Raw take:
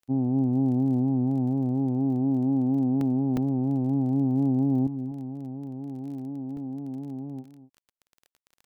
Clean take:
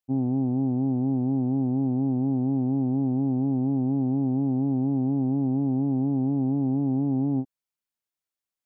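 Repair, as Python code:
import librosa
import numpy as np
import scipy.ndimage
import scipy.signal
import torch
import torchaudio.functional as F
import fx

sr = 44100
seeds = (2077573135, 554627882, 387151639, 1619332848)

y = fx.fix_declick_ar(x, sr, threshold=6.5)
y = fx.fix_interpolate(y, sr, at_s=(3.01, 3.37, 6.57), length_ms=2.3)
y = fx.fix_echo_inverse(y, sr, delay_ms=247, level_db=-14.5)
y = fx.gain(y, sr, db=fx.steps((0.0, 0.0), (4.87, 10.5)))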